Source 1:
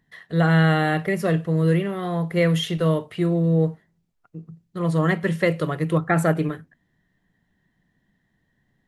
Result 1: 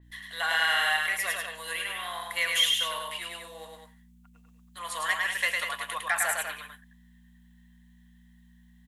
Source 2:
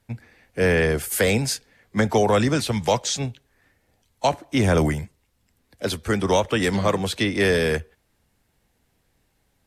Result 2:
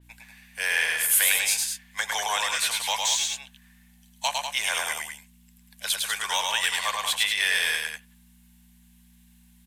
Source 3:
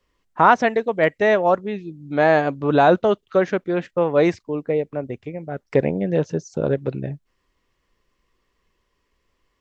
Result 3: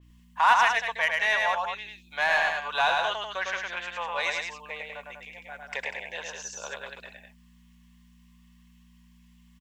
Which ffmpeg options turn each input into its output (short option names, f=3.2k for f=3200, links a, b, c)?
-filter_complex "[0:a]highpass=f=990:w=0.5412,highpass=f=990:w=1.3066,bandreject=f=1.3k:w=5.3,aeval=exprs='val(0)+0.00178*(sin(2*PI*60*n/s)+sin(2*PI*2*60*n/s)/2+sin(2*PI*3*60*n/s)/3+sin(2*PI*4*60*n/s)/4+sin(2*PI*5*60*n/s)/5)':c=same,asplit=2[a][b];[b]asoftclip=type=tanh:threshold=-21dB,volume=-3dB[c];[a][c]amix=inputs=2:normalize=0,aexciter=amount=1.4:drive=6.9:freq=2.7k,asplit=2[d][e];[e]aecho=0:1:105|195.3:0.708|0.447[f];[d][f]amix=inputs=2:normalize=0,adynamicequalizer=threshold=0.0178:dfrequency=4200:dqfactor=0.7:tfrequency=4200:tqfactor=0.7:attack=5:release=100:ratio=0.375:range=1.5:mode=cutabove:tftype=highshelf,volume=-4dB"